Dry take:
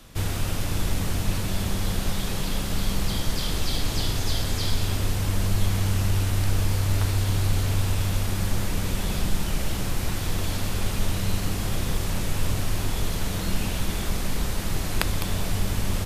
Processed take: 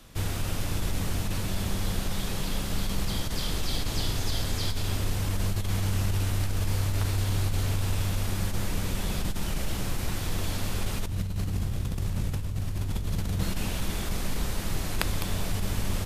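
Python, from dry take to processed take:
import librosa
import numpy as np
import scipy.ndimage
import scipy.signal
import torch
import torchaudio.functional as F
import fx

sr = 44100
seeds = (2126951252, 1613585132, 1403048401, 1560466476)

y = fx.peak_eq(x, sr, hz=79.0, db=12.5, octaves=3.0, at=(11.07, 13.43))
y = fx.over_compress(y, sr, threshold_db=-21.0, ratio=-1.0)
y = F.gain(torch.from_numpy(y), -4.5).numpy()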